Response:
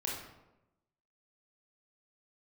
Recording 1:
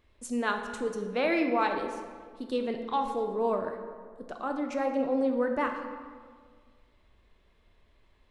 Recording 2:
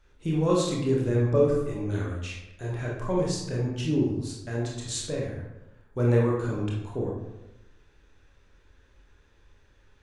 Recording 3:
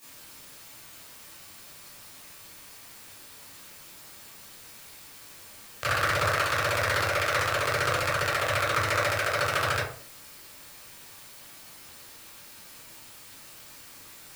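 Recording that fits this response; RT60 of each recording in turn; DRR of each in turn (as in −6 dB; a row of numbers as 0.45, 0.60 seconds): 2; 1.8, 0.95, 0.45 seconds; 4.0, −3.5, −11.5 decibels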